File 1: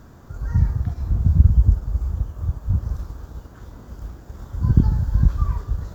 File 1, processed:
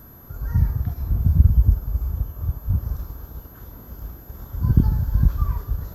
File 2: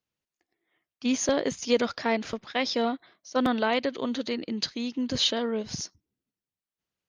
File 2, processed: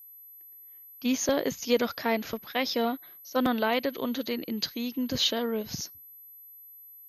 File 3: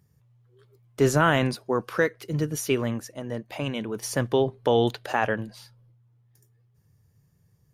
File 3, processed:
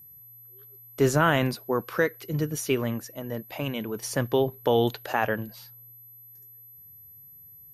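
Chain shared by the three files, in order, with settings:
steady tone 12,000 Hz −46 dBFS
level −1 dB

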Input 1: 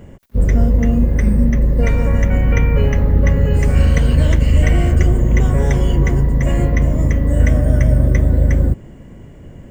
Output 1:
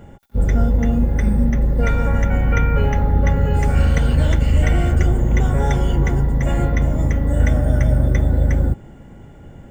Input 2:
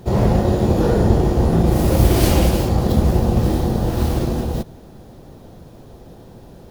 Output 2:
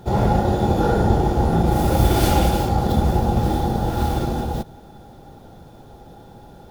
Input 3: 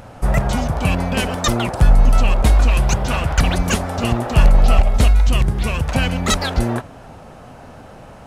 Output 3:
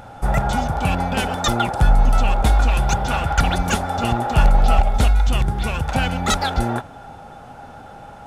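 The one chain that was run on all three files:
hollow resonant body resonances 820/1,400/3,500 Hz, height 14 dB, ringing for 55 ms
level −3 dB

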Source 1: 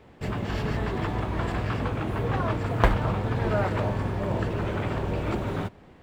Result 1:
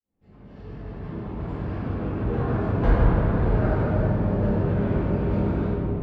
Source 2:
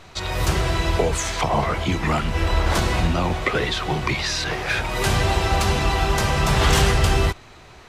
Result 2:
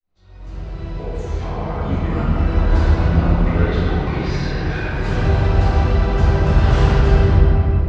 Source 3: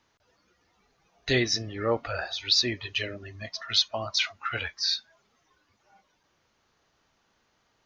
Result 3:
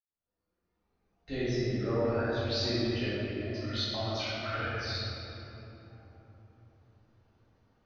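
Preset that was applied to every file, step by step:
fade in at the beginning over 2.49 s
low-pass filter 6,400 Hz 24 dB per octave
tilt shelving filter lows +6.5 dB, about 710 Hz
rectangular room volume 210 cubic metres, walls hard, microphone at 2.1 metres
dynamic equaliser 1,500 Hz, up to +5 dB, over −33 dBFS, Q 4.7
level −14 dB

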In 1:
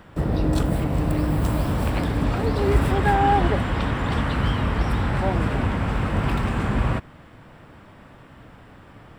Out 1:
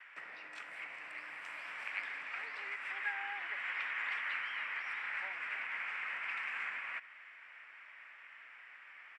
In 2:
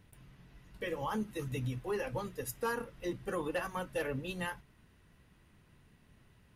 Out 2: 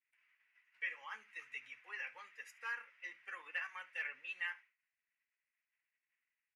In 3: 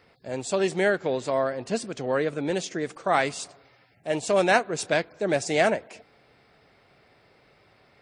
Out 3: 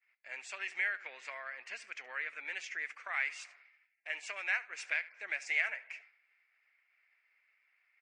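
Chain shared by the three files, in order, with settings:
downward expander −50 dBFS
single-tap delay 72 ms −21 dB
downward compressor 6 to 1, threshold −25 dBFS
flat-topped band-pass 3,500 Hz, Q 0.8
high shelf with overshoot 2,900 Hz −9 dB, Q 3
level +1 dB

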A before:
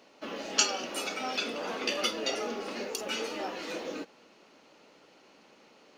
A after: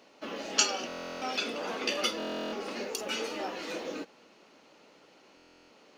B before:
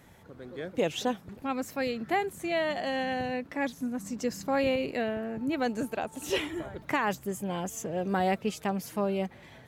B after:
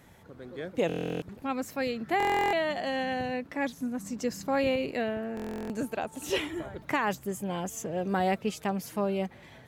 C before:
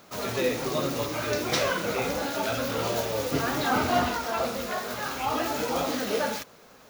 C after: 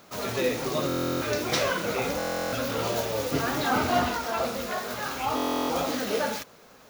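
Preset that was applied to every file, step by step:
buffer that repeats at 0:00.87/0:02.18/0:05.35, samples 1,024, times 14

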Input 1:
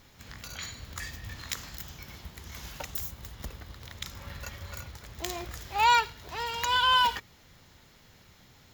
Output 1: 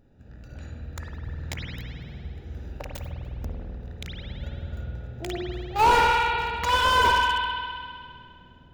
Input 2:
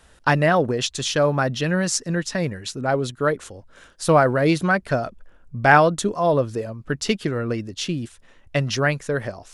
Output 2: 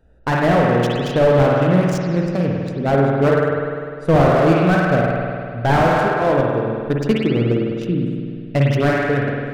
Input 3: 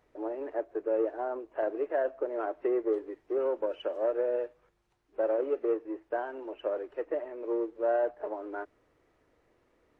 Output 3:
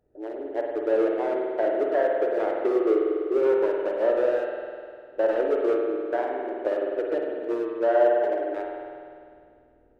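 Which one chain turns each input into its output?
adaptive Wiener filter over 41 samples
mains-hum notches 50/100/150/200 Hz
automatic gain control gain up to 4.5 dB
spring reverb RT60 2.2 s, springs 50 ms, chirp 50 ms, DRR −0.5 dB
slew-rate limiting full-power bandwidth 150 Hz
level +1.5 dB

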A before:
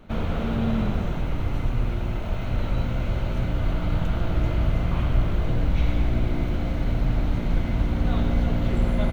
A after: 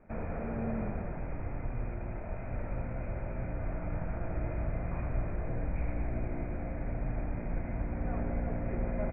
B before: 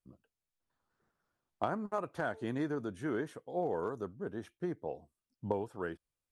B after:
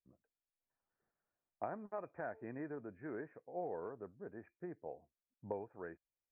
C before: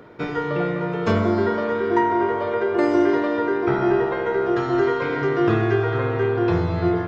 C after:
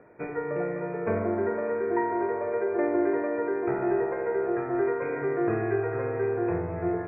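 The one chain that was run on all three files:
dynamic equaliser 440 Hz, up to +4 dB, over −32 dBFS, Q 1.8
Chebyshev low-pass with heavy ripple 2,500 Hz, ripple 6 dB
level −6 dB

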